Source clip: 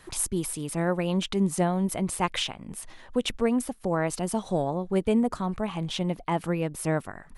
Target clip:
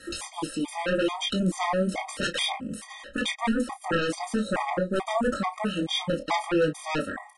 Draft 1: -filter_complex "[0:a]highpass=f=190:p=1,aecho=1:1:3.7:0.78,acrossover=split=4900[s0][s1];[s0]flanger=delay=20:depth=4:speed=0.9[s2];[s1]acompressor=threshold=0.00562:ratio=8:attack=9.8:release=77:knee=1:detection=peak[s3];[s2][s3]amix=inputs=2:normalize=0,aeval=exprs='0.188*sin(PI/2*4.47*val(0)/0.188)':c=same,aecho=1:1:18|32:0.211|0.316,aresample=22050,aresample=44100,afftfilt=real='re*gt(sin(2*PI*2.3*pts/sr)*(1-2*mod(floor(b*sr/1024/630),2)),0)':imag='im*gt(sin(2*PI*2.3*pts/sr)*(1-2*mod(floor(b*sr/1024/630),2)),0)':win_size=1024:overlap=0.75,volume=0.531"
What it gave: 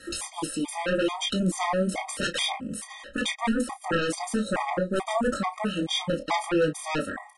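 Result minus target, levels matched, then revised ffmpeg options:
compression: peak gain reduction -8 dB
-filter_complex "[0:a]highpass=f=190:p=1,aecho=1:1:3.7:0.78,acrossover=split=4900[s0][s1];[s0]flanger=delay=20:depth=4:speed=0.9[s2];[s1]acompressor=threshold=0.002:ratio=8:attack=9.8:release=77:knee=1:detection=peak[s3];[s2][s3]amix=inputs=2:normalize=0,aeval=exprs='0.188*sin(PI/2*4.47*val(0)/0.188)':c=same,aecho=1:1:18|32:0.211|0.316,aresample=22050,aresample=44100,afftfilt=real='re*gt(sin(2*PI*2.3*pts/sr)*(1-2*mod(floor(b*sr/1024/630),2)),0)':imag='im*gt(sin(2*PI*2.3*pts/sr)*(1-2*mod(floor(b*sr/1024/630),2)),0)':win_size=1024:overlap=0.75,volume=0.531"

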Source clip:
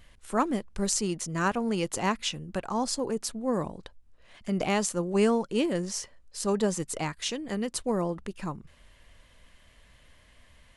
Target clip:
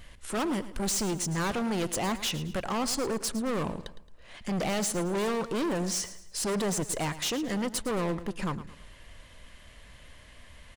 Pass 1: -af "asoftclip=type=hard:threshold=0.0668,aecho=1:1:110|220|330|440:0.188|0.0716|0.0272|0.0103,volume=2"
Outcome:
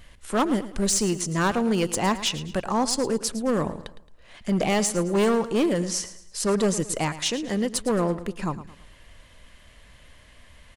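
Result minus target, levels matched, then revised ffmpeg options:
hard clipper: distortion -8 dB
-af "asoftclip=type=hard:threshold=0.0211,aecho=1:1:110|220|330|440:0.188|0.0716|0.0272|0.0103,volume=2"

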